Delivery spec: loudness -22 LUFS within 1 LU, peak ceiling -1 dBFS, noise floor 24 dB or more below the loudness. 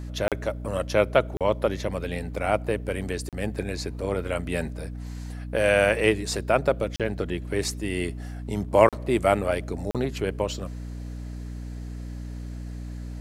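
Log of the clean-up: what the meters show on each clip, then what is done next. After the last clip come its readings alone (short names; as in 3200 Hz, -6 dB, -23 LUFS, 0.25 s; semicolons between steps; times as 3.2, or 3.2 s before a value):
dropouts 6; longest dropout 37 ms; hum 60 Hz; harmonics up to 300 Hz; hum level -33 dBFS; loudness -26.0 LUFS; peak -2.5 dBFS; loudness target -22.0 LUFS
-> interpolate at 0.28/1.37/3.29/6.96/8.89/9.91, 37 ms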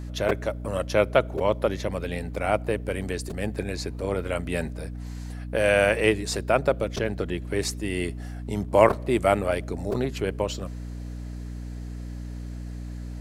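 dropouts 0; hum 60 Hz; harmonics up to 300 Hz; hum level -33 dBFS
-> notches 60/120/180/240/300 Hz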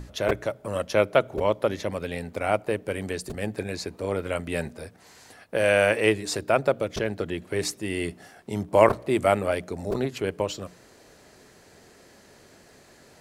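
hum none; loudness -26.0 LUFS; peak -2.5 dBFS; loudness target -22.0 LUFS
-> gain +4 dB; limiter -1 dBFS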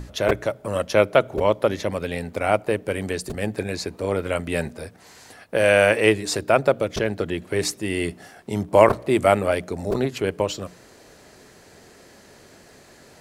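loudness -22.0 LUFS; peak -1.0 dBFS; noise floor -50 dBFS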